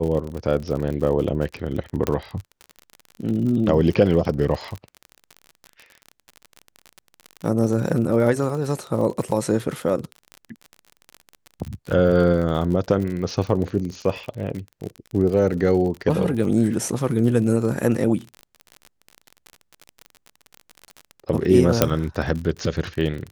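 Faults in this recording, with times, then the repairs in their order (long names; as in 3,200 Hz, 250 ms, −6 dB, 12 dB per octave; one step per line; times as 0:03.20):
surface crackle 45 per second −28 dBFS
0:02.07: click −8 dBFS
0:21.82: click 0 dBFS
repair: click removal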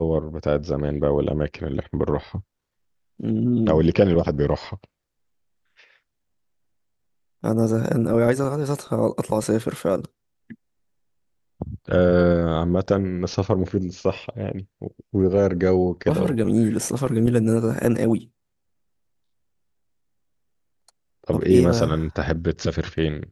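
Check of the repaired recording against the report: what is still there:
none of them is left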